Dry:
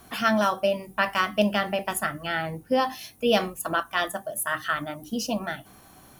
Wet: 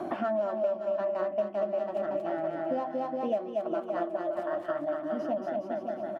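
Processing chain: tracing distortion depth 0.17 ms; two resonant band-passes 460 Hz, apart 0.77 oct; bouncing-ball echo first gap 230 ms, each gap 0.8×, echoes 5; three bands compressed up and down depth 100%

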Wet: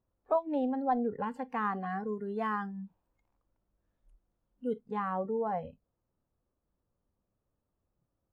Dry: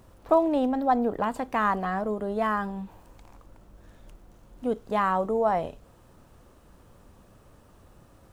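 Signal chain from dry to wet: spectral noise reduction 22 dB; low-pass 1.6 kHz 6 dB/octave, from 1.90 s 3.4 kHz, from 4.81 s 1 kHz; trim -5.5 dB

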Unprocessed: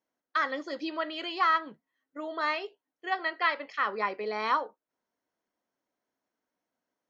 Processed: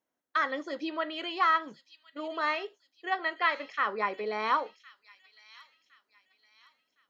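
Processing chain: peaking EQ 4.7 kHz -7.5 dB 0.21 oct; on a send: feedback echo behind a high-pass 1062 ms, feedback 38%, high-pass 4.3 kHz, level -7 dB

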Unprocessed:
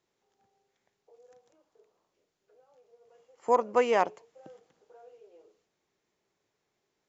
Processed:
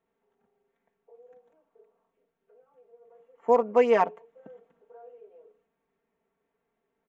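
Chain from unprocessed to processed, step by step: local Wiener filter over 9 samples; low-pass 2.4 kHz 6 dB/octave; comb 4.4 ms, depth 96%

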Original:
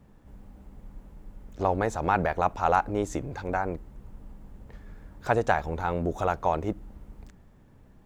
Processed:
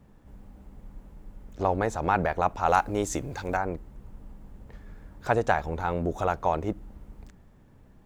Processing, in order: 2.68–3.57 s: treble shelf 3 kHz +9.5 dB

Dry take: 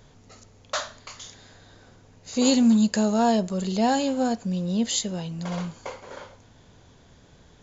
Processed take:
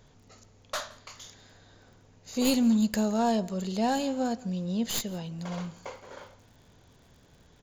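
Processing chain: tracing distortion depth 0.078 ms; echo from a far wall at 29 m, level -22 dB; crackle 17 per s -46 dBFS, from 5.23 s 97 per s; trim -5 dB

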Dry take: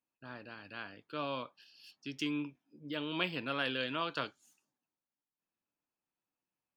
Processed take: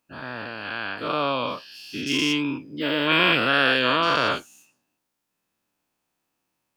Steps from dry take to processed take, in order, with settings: every event in the spectrogram widened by 240 ms; trim +9 dB

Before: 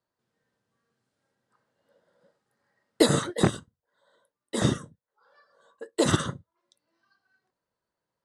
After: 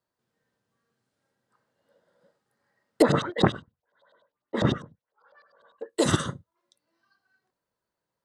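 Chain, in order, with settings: 3.02–5.90 s: LFO low-pass saw up 10 Hz 600–5000 Hz

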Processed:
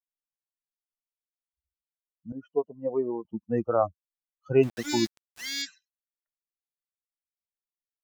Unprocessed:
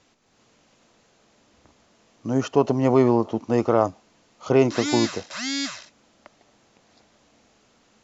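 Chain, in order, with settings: expander on every frequency bin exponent 3; 2.32–3.25 s: band-pass filter 500 Hz, Q 2.9; 4.63–5.62 s: small samples zeroed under -38.5 dBFS

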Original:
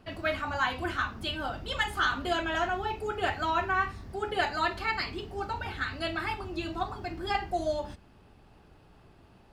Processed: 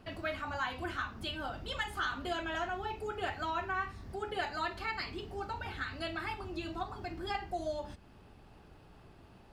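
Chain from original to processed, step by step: compression 1.5:1, threshold -45 dBFS, peak gain reduction 8 dB

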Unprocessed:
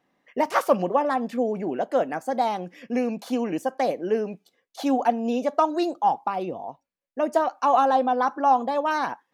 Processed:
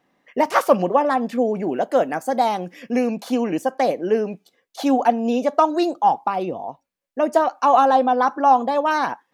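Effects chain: 1.62–3.10 s: treble shelf 7.8 kHz +6.5 dB; trim +4.5 dB

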